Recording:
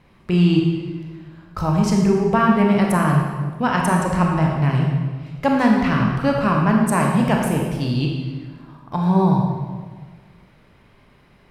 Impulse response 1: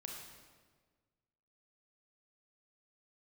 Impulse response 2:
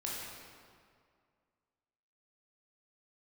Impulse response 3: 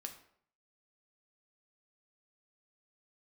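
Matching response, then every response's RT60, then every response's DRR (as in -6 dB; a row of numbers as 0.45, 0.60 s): 1; 1.5, 2.1, 0.60 s; -0.5, -5.5, 4.0 dB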